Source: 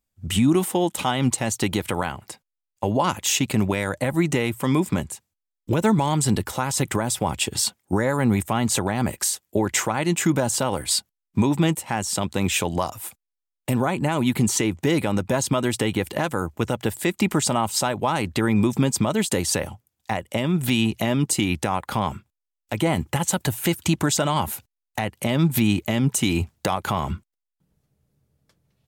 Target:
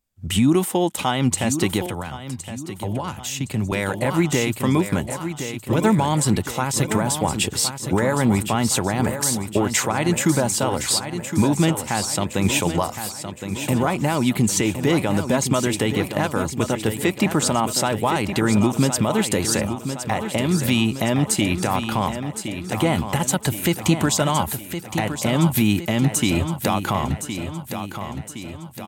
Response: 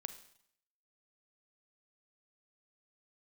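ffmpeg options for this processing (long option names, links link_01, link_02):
-filter_complex "[0:a]asplit=2[link_01][link_02];[link_02]aecho=0:1:1065|2130|3195|4260|5325|6390:0.355|0.188|0.0997|0.0528|0.028|0.0148[link_03];[link_01][link_03]amix=inputs=2:normalize=0,asettb=1/sr,asplit=3[link_04][link_05][link_06];[link_04]atrim=end=1.864[link_07];[link_05]atrim=start=1.86:end=3.72,asetpts=PTS-STARTPTS,afade=type=in:duration=0.004:curve=qsin,afade=type=out:start_time=1.856:duration=0.004:curve=qsin,acrossover=split=160[link_08][link_09];[link_09]acompressor=threshold=-35dB:ratio=2[link_10];[link_08][link_10]amix=inputs=2:normalize=0[link_11];[link_06]atrim=start=3.716[link_12];[link_07][link_11]acrossfade=duration=0.004:curve1=hsin:curve2=qsin[link_13];[link_13][link_12]acrossfade=duration=0.004:curve1=qsin:curve2=hsin,volume=1.5dB"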